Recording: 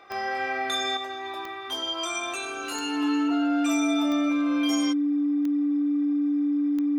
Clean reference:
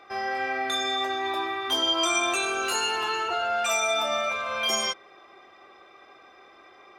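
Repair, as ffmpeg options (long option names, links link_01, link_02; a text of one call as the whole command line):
ffmpeg -i in.wav -af "adeclick=threshold=4,bandreject=frequency=290:width=30,asetnsamples=nb_out_samples=441:pad=0,asendcmd='0.97 volume volume 6dB',volume=0dB" out.wav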